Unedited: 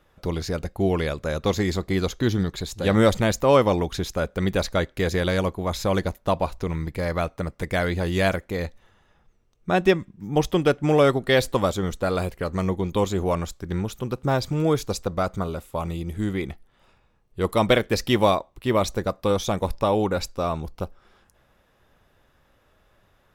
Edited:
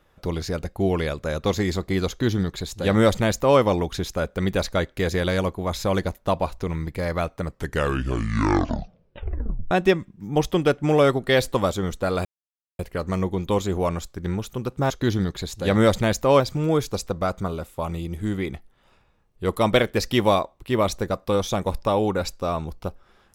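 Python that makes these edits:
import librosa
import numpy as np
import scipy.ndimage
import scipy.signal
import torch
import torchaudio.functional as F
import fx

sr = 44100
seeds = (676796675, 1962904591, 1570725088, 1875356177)

y = fx.edit(x, sr, fx.duplicate(start_s=2.09, length_s=1.5, to_s=14.36),
    fx.tape_stop(start_s=7.41, length_s=2.3),
    fx.insert_silence(at_s=12.25, length_s=0.54), tone=tone)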